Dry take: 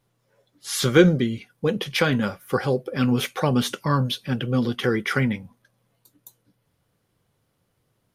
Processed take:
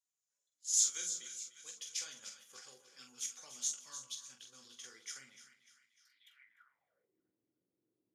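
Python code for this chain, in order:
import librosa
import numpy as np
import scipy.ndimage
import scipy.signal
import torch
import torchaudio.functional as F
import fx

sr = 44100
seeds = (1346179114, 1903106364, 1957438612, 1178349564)

p1 = fx.tilt_shelf(x, sr, db=-4.0, hz=740.0, at=(0.77, 1.85))
p2 = p1 + fx.echo_split(p1, sr, split_hz=1200.0, low_ms=123, high_ms=299, feedback_pct=52, wet_db=-10, dry=0)
p3 = fx.dynamic_eq(p2, sr, hz=6800.0, q=1.1, threshold_db=-44.0, ratio=4.0, max_db=7)
p4 = fx.room_early_taps(p3, sr, ms=(16, 45), db=(-8.0, -5.5))
p5 = fx.level_steps(p4, sr, step_db=11)
p6 = p4 + (p5 * 10.0 ** (-2.0 / 20.0))
p7 = fx.filter_sweep_bandpass(p6, sr, from_hz=6900.0, to_hz=320.0, start_s=5.97, end_s=7.19, q=6.1)
y = p7 * 10.0 ** (-7.0 / 20.0)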